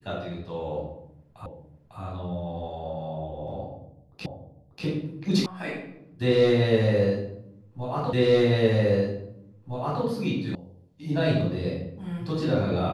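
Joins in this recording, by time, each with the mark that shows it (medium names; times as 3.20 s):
1.46 s: repeat of the last 0.55 s
4.26 s: repeat of the last 0.59 s
5.46 s: sound stops dead
8.13 s: repeat of the last 1.91 s
10.55 s: sound stops dead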